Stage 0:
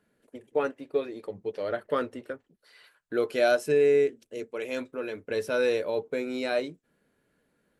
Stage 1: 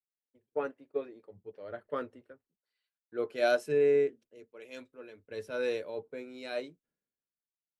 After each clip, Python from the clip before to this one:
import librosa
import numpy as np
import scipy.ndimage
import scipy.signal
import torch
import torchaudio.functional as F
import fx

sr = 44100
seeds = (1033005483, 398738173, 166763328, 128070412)

y = fx.high_shelf(x, sr, hz=5100.0, db=-6.5)
y = fx.band_widen(y, sr, depth_pct=100)
y = F.gain(torch.from_numpy(y), -8.5).numpy()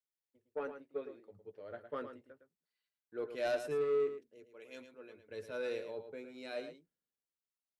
y = 10.0 ** (-24.0 / 20.0) * np.tanh(x / 10.0 ** (-24.0 / 20.0))
y = y + 10.0 ** (-9.5 / 20.0) * np.pad(y, (int(110 * sr / 1000.0), 0))[:len(y)]
y = F.gain(torch.from_numpy(y), -5.0).numpy()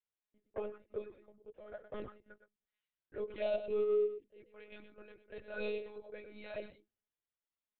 y = fx.env_flanger(x, sr, rest_ms=7.9, full_db=-35.5)
y = fx.lpc_monotone(y, sr, seeds[0], pitch_hz=210.0, order=16)
y = F.gain(torch.from_numpy(y), 1.5).numpy()